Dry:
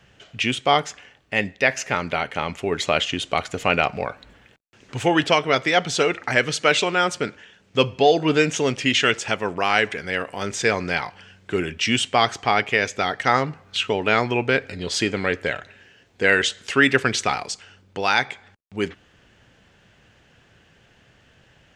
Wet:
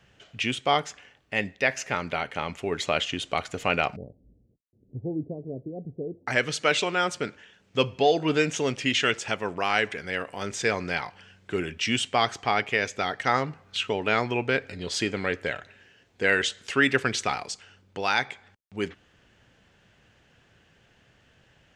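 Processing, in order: 3.96–6.27 s: Gaussian low-pass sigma 22 samples; trim -5 dB

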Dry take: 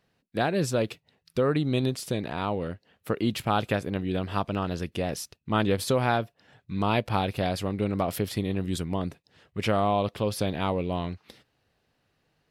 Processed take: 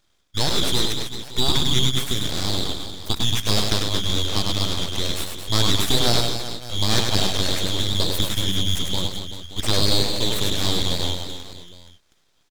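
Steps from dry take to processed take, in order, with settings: four frequency bands reordered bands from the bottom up 4123; reverse bouncing-ball echo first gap 100 ms, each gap 1.25×, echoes 5; full-wave rectifier; trim +6 dB

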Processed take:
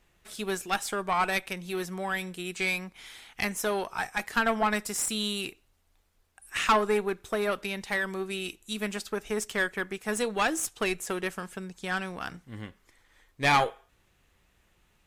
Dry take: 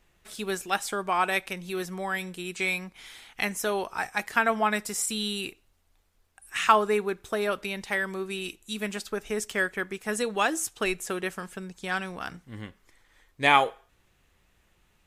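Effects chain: valve stage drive 17 dB, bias 0.55; trim +2 dB

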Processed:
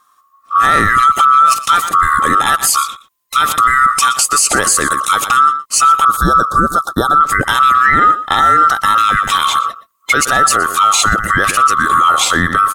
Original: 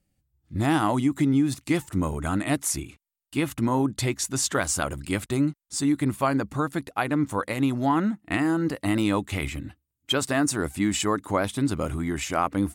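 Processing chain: split-band scrambler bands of 1 kHz; 3.58–5.12 s: peaking EQ 9 kHz +7.5 dB 0.8 oct; 6.05–7.21 s: Chebyshev band-stop 1.4–3.8 kHz, order 3; delay 119 ms -17 dB; loudness maximiser +20.5 dB; trim -1 dB

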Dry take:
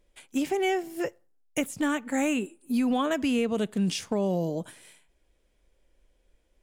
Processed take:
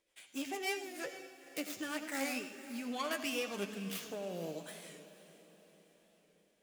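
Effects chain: tracing distortion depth 0.26 ms; rotary cabinet horn 6.7 Hz, later 0.75 Hz, at 1.22 s; in parallel at 0 dB: compression, threshold -36 dBFS, peak gain reduction 13.5 dB; on the sum: high-pass 1.1 kHz 6 dB/octave; on a send at -10 dB: reverberation RT60 1.1 s, pre-delay 73 ms; on the sum: flange 0.54 Hz, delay 9.1 ms, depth 4.2 ms, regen +38%; echo that smears into a reverb 487 ms, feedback 50%, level -14.5 dB; warped record 45 rpm, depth 100 cents; trim -1 dB

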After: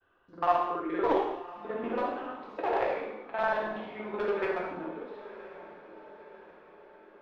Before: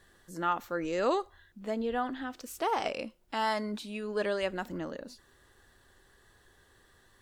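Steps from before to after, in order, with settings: time reversed locally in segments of 47 ms; expander -57 dBFS; three-band isolator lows -15 dB, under 350 Hz, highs -21 dB, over 4.2 kHz; in parallel at -9 dB: bit crusher 4-bit; on the sum: echo that smears into a reverb 1020 ms, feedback 52%, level -15 dB; formant shift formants -3 st; distance through air 330 m; gated-style reverb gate 300 ms falling, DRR -2 dB

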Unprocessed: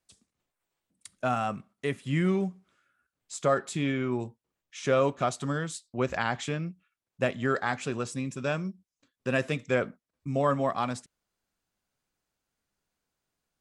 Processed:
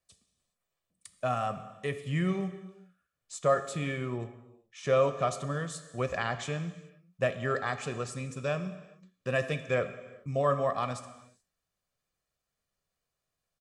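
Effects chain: comb 1.7 ms, depth 47%; gated-style reverb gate 450 ms falling, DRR 10 dB; 3.39–5.68 s: tape noise reduction on one side only decoder only; trim -3.5 dB

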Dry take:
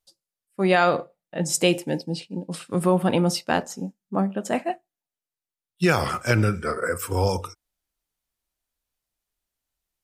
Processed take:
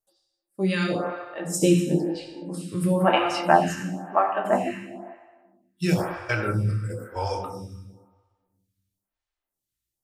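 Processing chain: 1.58–2.15 s: tilt shelf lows +5.5 dB, about 1.1 kHz; 2.99–4.69 s: time-frequency box 580–3200 Hz +10 dB; 5.94–7.16 s: gate -23 dBFS, range -22 dB; reverberation RT60 1.3 s, pre-delay 4 ms, DRR 0 dB; lamp-driven phase shifter 1 Hz; trim -3 dB

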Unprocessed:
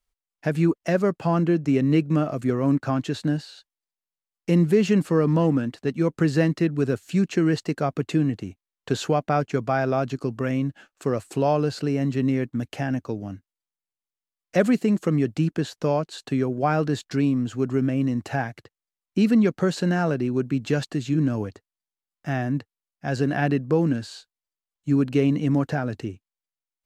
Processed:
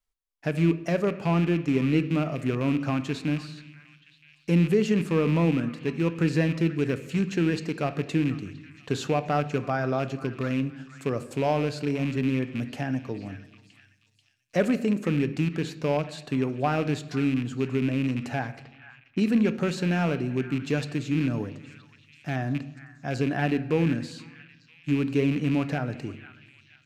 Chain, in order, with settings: rattle on loud lows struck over -25 dBFS, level -23 dBFS; repeats whose band climbs or falls 486 ms, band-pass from 1.6 kHz, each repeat 0.7 oct, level -12 dB; on a send at -11.5 dB: reverberation RT60 1.0 s, pre-delay 7 ms; on the sum: vibrato 1.5 Hz 13 cents; 18.15–19.18 s: level-controlled noise filter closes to 2 kHz, open at -25.5 dBFS; trim -4 dB

